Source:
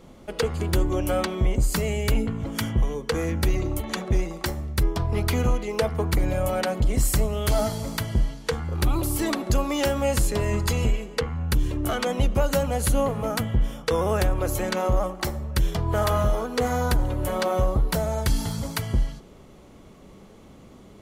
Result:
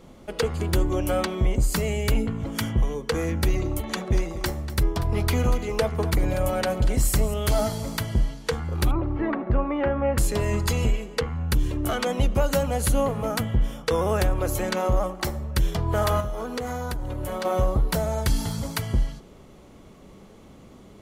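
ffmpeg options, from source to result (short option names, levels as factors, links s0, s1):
-filter_complex "[0:a]asettb=1/sr,asplit=3[s0][s1][s2];[s0]atrim=end=3.894[s3];[s1]atrim=start=3.89:end=7.34,asetpts=PTS-STARTPTS,afade=t=in:d=0.004:c=qsin,afade=t=out:st=3.446:d=0.004:c=qsin,aecho=1:1:240:0.211,atrim=end_sample=152145[s4];[s2]atrim=start=7.336[s5];[s3][s4]acrossfade=d=0.004:c1=hsin:c2=qsin[s6];[s6][s5]acrossfade=d=0.004:c1=qsin:c2=hsin,asettb=1/sr,asplit=3[s7][s8][s9];[s7]atrim=end=8.914[s10];[s8]atrim=start=8.91:end=10.18,asetpts=PTS-STARTPTS,afade=t=in:d=0.004:c=qsin,afade=t=out:st=1.266:d=0.004:c=qsin,lowpass=f=2000:w=0.5412,lowpass=f=2000:w=1.3066[s11];[s9]atrim=start=10.176[s12];[s10][s11]acrossfade=d=0.004:c1=hsin:c2=qsin[s13];[s13][s12]acrossfade=d=0.004:c1=qsin:c2=hsin,asettb=1/sr,asplit=3[s14][s15][s16];[s14]atrim=end=16.204[s17];[s15]atrim=start=16.2:end=17.45,asetpts=PTS-STARTPTS,afade=t=in:d=0.004:c=qsin,afade=t=out:st=1.246:d=0.004:c=qsin,acompressor=threshold=0.0562:ratio=12:attack=3.2:release=140:knee=1:detection=peak[s18];[s16]atrim=start=17.446[s19];[s17][s18]acrossfade=d=0.004:c1=hsin:c2=qsin[s20];[s20][s19]acrossfade=d=0.004:c1=qsin:c2=hsin"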